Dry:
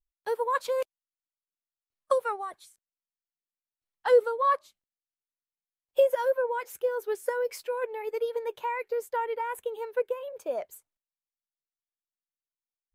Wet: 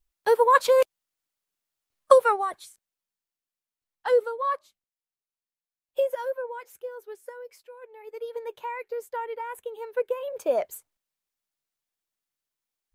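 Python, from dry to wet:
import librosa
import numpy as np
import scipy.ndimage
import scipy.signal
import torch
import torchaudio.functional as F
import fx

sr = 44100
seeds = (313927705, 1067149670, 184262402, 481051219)

y = fx.gain(x, sr, db=fx.line((2.17, 9.5), (4.53, -3.0), (6.1, -3.0), (7.79, -15.0), (8.38, -2.5), (9.75, -2.5), (10.43, 7.5)))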